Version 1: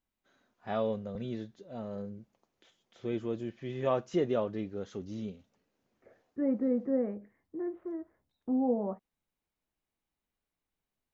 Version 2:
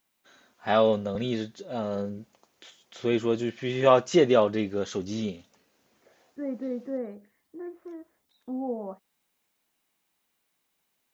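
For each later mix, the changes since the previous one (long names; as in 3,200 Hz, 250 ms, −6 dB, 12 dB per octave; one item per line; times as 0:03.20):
first voice +12.0 dB
master: add spectral tilt +2 dB per octave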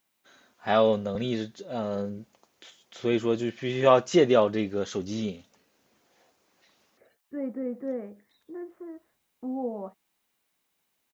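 second voice: entry +0.95 s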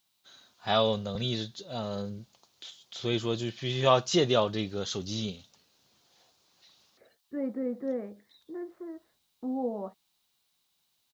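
first voice: add octave-band graphic EQ 125/250/500/2,000/4,000 Hz +4/−6/−5/−7/+10 dB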